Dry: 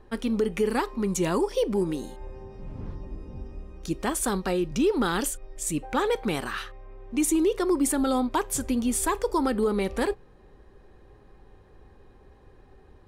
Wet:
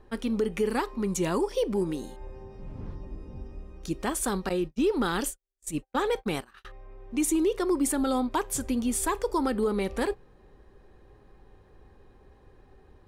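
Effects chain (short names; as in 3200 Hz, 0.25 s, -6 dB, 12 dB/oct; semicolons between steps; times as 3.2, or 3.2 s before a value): 4.49–6.65 gate -28 dBFS, range -49 dB; gain -2 dB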